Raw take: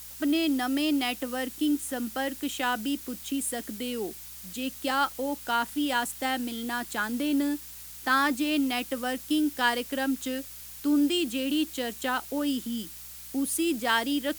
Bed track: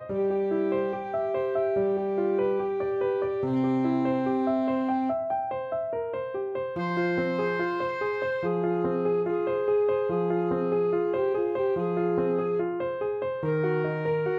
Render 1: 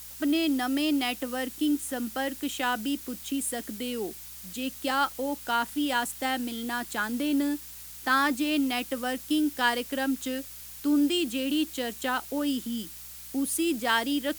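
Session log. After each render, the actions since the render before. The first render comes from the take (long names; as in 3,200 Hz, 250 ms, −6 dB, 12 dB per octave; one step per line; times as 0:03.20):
no processing that can be heard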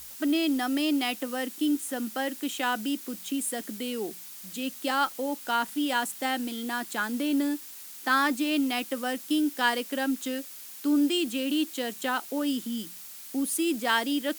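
hum removal 60 Hz, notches 3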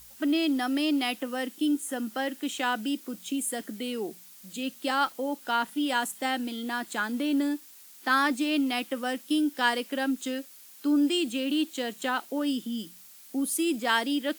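noise reduction from a noise print 7 dB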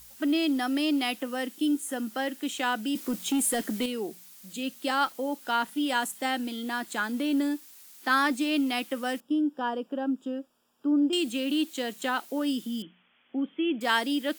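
0:02.95–0:03.86: leveller curve on the samples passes 2
0:09.20–0:11.13: moving average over 21 samples
0:12.82–0:13.81: Chebyshev low-pass filter 3,400 Hz, order 10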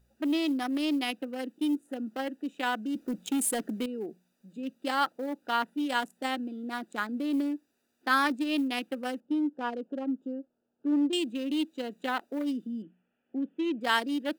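adaptive Wiener filter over 41 samples
low-shelf EQ 150 Hz −6.5 dB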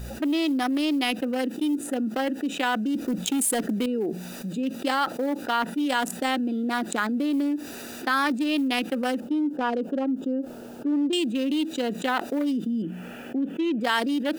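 envelope flattener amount 70%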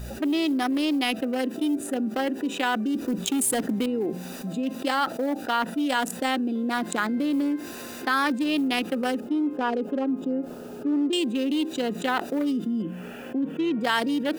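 mix in bed track −18.5 dB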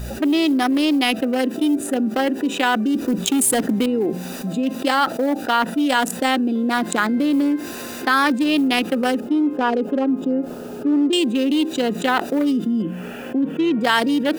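level +6.5 dB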